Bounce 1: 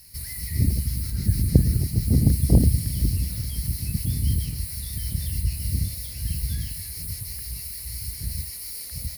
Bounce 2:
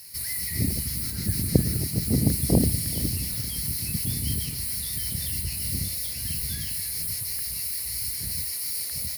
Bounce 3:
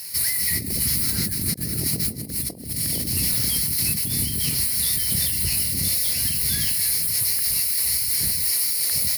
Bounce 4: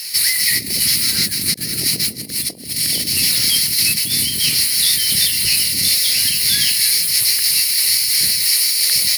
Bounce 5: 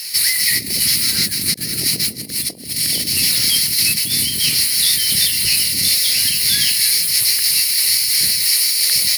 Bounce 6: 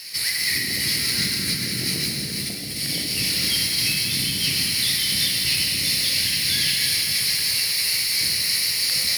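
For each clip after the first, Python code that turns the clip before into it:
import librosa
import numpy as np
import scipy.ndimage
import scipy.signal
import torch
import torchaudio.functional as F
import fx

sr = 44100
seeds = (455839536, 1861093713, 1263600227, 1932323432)

y1 = fx.highpass(x, sr, hz=350.0, slope=6)
y1 = y1 + 10.0 ** (-17.0 / 20.0) * np.pad(y1, (int(426 * sr / 1000.0), 0))[:len(y1)]
y1 = F.gain(torch.from_numpy(y1), 5.0).numpy()
y2 = fx.low_shelf(y1, sr, hz=120.0, db=-10.5)
y2 = fx.over_compress(y2, sr, threshold_db=-31.0, ratio=-0.5)
y2 = F.gain(torch.from_numpy(y2), 8.0).numpy()
y3 = fx.weighting(y2, sr, curve='D')
y3 = F.gain(torch.from_numpy(y3), 2.5).numpy()
y4 = y3
y5 = fx.lowpass(y4, sr, hz=3500.0, slope=6)
y5 = fx.rev_plate(y5, sr, seeds[0], rt60_s=3.7, hf_ratio=1.0, predelay_ms=0, drr_db=-1.5)
y5 = F.gain(torch.from_numpy(y5), -4.0).numpy()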